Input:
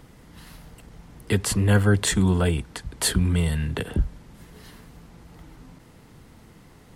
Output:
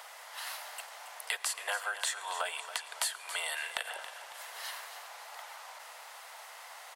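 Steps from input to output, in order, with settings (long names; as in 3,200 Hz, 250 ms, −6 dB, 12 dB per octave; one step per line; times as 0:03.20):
Butterworth high-pass 620 Hz 48 dB per octave
downward compressor 8 to 1, threshold −41 dBFS, peak gain reduction 21.5 dB
gain into a clipping stage and back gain 25.5 dB
repeating echo 276 ms, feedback 43%, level −12 dB
convolution reverb RT60 1.8 s, pre-delay 86 ms, DRR 18 dB
level +9 dB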